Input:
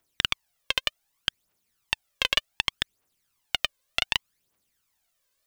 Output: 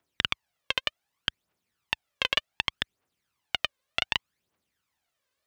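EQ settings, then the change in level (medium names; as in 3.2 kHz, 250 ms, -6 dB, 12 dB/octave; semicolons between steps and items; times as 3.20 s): high-pass 60 Hz; tone controls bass 0 dB, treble -3 dB; treble shelf 6.1 kHz -9 dB; 0.0 dB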